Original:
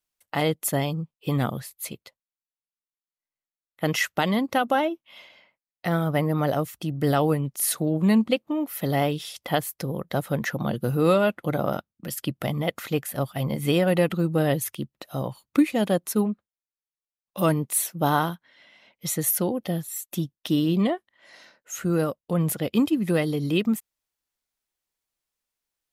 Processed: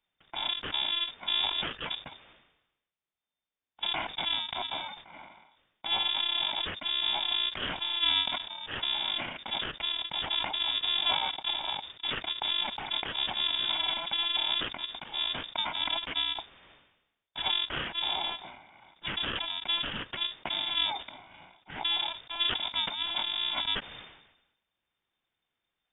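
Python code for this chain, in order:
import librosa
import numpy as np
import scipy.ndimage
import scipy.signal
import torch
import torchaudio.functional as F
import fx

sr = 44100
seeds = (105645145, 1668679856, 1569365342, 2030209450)

p1 = fx.bit_reversed(x, sr, seeds[0], block=128)
p2 = fx.over_compress(p1, sr, threshold_db=-34.0, ratio=-1.0)
p3 = p1 + (p2 * 10.0 ** (-2.0 / 20.0))
p4 = fx.freq_invert(p3, sr, carrier_hz=3600)
p5 = fx.sustainer(p4, sr, db_per_s=62.0)
y = p5 * 10.0 ** (-3.0 / 20.0)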